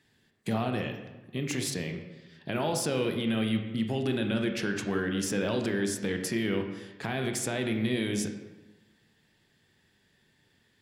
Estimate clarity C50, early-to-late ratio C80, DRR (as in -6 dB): 6.5 dB, 9.0 dB, 4.5 dB